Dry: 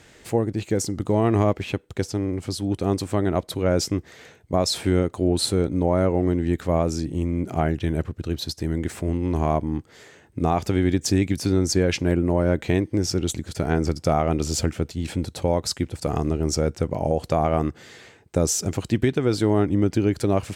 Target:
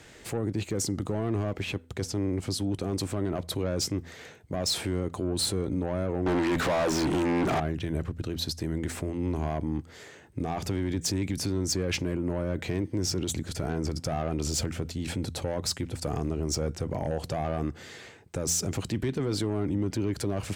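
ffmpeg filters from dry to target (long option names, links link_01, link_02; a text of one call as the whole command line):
ffmpeg -i in.wav -filter_complex "[0:a]acrossover=split=270[link_01][link_02];[link_02]asoftclip=type=tanh:threshold=-19.5dB[link_03];[link_01][link_03]amix=inputs=2:normalize=0,alimiter=limit=-21dB:level=0:latency=1:release=27,bandreject=frequency=84.29:width_type=h:width=4,bandreject=frequency=168.58:width_type=h:width=4,bandreject=frequency=252.87:width_type=h:width=4,asettb=1/sr,asplit=3[link_04][link_05][link_06];[link_04]atrim=end=6.264[link_07];[link_05]atrim=start=6.26:end=7.6,asetpts=PTS-STARTPTS,afade=type=in:duration=0.004:curve=qsin,afade=type=out:start_time=1.336:duration=0.004:curve=qsin,asplit=2[link_08][link_09];[link_09]highpass=frequency=720:poles=1,volume=32dB,asoftclip=type=tanh:threshold=-19dB[link_10];[link_08][link_10]amix=inputs=2:normalize=0,lowpass=frequency=2900:poles=1,volume=-6dB[link_11];[link_06]atrim=start=7.596[link_12];[link_07][link_11]acrossfade=duration=0.004:curve1=hsin:curve2=qsin[link_13];[link_13][link_12]acrossfade=duration=0.004:curve1=qsin:curve2=hsin" out.wav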